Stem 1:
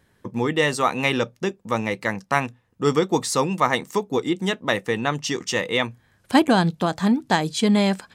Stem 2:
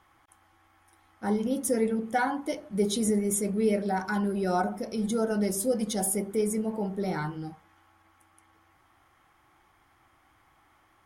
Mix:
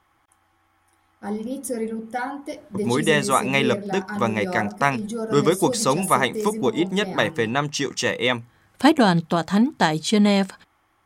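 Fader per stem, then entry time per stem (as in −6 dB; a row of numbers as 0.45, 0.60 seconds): +1.0, −1.0 decibels; 2.50, 0.00 seconds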